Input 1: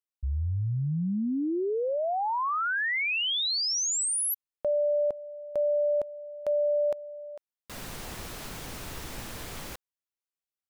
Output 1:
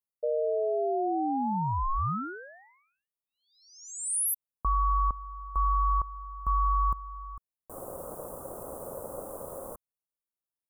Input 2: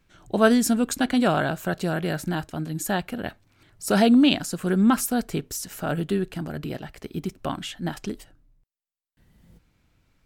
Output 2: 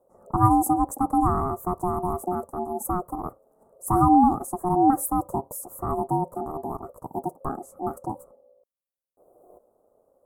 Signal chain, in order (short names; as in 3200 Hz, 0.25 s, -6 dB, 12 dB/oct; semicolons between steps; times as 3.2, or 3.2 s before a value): Chebyshev band-stop 680–9400 Hz, order 3; ring modulator 540 Hz; gain +3.5 dB